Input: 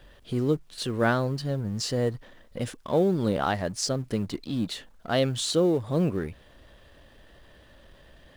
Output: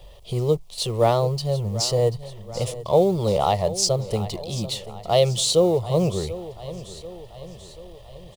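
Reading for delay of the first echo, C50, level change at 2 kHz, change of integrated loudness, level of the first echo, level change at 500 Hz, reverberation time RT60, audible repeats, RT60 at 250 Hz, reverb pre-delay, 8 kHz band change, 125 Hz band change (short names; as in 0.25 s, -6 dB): 0.737 s, none, -6.5 dB, +5.0 dB, -15.5 dB, +7.0 dB, none, 4, none, none, +8.0 dB, +5.0 dB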